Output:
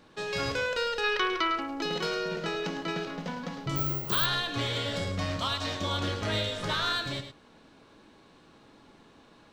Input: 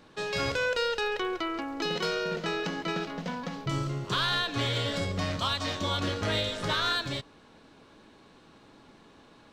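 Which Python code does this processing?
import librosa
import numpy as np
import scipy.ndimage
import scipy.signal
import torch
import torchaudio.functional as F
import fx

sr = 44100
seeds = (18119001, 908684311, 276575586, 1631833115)

p1 = fx.spec_box(x, sr, start_s=1.04, length_s=0.52, low_hz=890.0, high_hz=6200.0, gain_db=8)
p2 = p1 + fx.echo_single(p1, sr, ms=105, db=-9.5, dry=0)
p3 = fx.resample_bad(p2, sr, factor=2, down='none', up='zero_stuff', at=(3.76, 4.26))
y = p3 * librosa.db_to_amplitude(-1.5)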